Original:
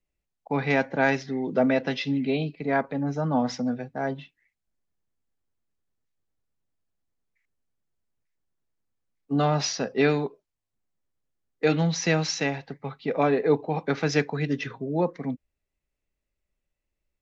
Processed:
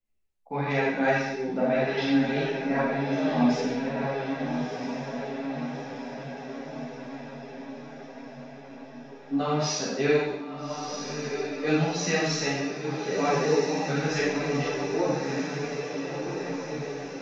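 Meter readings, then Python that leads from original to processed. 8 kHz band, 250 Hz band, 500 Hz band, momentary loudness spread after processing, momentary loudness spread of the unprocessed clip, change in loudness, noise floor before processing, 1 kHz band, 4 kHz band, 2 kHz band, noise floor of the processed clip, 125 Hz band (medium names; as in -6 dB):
no reading, +0.5 dB, +0.5 dB, 16 LU, 8 LU, -2.0 dB, -84 dBFS, +0.5 dB, +1.0 dB, 0.0 dB, -45 dBFS, -2.5 dB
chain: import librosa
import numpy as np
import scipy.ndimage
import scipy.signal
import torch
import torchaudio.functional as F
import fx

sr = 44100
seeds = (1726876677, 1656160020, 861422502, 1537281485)

y = fx.echo_diffused(x, sr, ms=1293, feedback_pct=63, wet_db=-6)
y = fx.rev_schroeder(y, sr, rt60_s=0.9, comb_ms=29, drr_db=-4.5)
y = fx.ensemble(y, sr)
y = y * 10.0 ** (-3.5 / 20.0)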